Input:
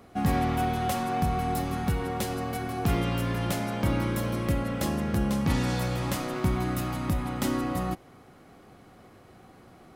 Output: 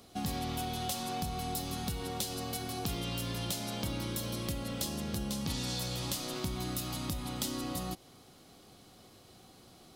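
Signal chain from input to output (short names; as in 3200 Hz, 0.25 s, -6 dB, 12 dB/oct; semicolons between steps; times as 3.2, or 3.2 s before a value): resonant high shelf 2700 Hz +11 dB, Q 1.5; compressor 3:1, threshold -28 dBFS, peak gain reduction 7 dB; gain -5.5 dB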